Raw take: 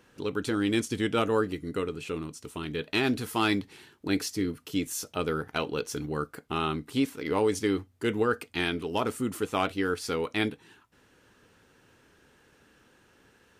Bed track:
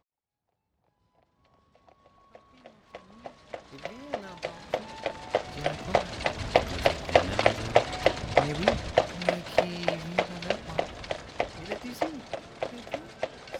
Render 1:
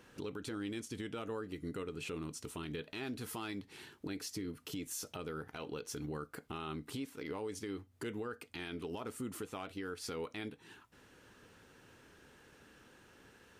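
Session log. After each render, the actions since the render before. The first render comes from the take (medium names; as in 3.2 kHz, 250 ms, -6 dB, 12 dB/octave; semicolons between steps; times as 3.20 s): compression 6:1, threshold -37 dBFS, peak gain reduction 15.5 dB; peak limiter -32 dBFS, peak gain reduction 9 dB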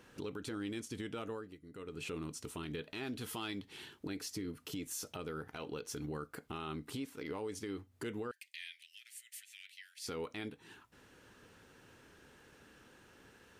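1.25–2.03 s: dip -13.5 dB, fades 0.34 s; 3.12–3.99 s: peaking EQ 3.2 kHz +6.5 dB 0.44 oct; 8.31–10.07 s: steep high-pass 1.8 kHz 72 dB/octave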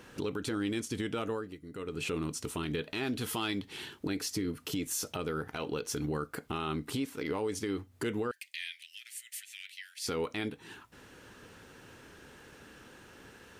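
trim +7.5 dB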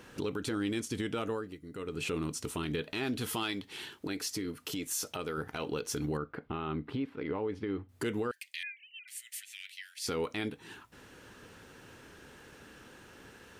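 3.43–5.38 s: bass shelf 290 Hz -6.5 dB; 6.17–7.89 s: distance through air 400 m; 8.63–9.08 s: formants replaced by sine waves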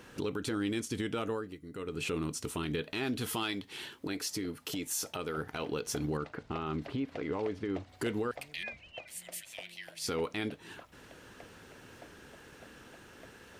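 add bed track -25.5 dB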